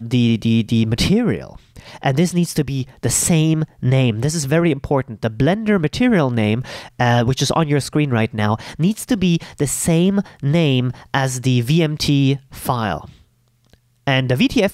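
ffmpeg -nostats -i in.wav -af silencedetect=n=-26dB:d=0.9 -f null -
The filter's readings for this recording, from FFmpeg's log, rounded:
silence_start: 13.05
silence_end: 14.07 | silence_duration: 1.02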